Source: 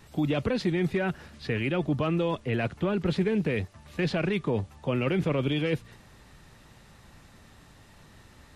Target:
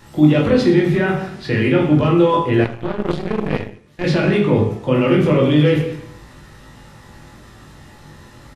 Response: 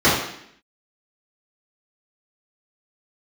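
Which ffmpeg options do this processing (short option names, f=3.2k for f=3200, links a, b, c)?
-filter_complex "[0:a]aecho=1:1:20|46|79.8|123.7|180.9:0.631|0.398|0.251|0.158|0.1,asplit=2[a][b];[1:a]atrim=start_sample=2205[c];[b][c]afir=irnorm=-1:irlink=0,volume=-25dB[d];[a][d]amix=inputs=2:normalize=0,asettb=1/sr,asplit=3[e][f][g];[e]atrim=end=2.644[h];[f]atrim=start=2.64:end=4.04,asetpts=PTS-STARTPTS,afade=t=in:d=0.004:c=qsin,afade=t=out:st=1.396:d=0.004:c=qsin,aeval=exprs='0.422*(cos(1*acos(clip(val(0)/0.422,-1,1)))-cos(1*PI/2))+0.119*(cos(3*acos(clip(val(0)/0.422,-1,1)))-cos(3*PI/2))+0.00237*(cos(5*acos(clip(val(0)/0.422,-1,1)))-cos(5*PI/2))+0.0211*(cos(6*acos(clip(val(0)/0.422,-1,1)))-cos(6*PI/2))':c=same[i];[g]atrim=start=4.036[j];[h][i]acrossfade=d=0.004:c1=hsin:c2=qsin[k];[k][j]acrossfade=d=0.004:c1=qsin:c2=hsin,volume=6dB"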